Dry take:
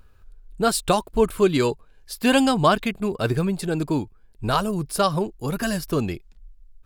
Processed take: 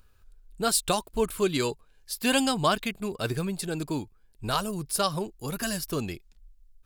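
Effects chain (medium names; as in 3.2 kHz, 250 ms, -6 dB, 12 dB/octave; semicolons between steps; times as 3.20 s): treble shelf 2.7 kHz +9.5 dB; trim -7.5 dB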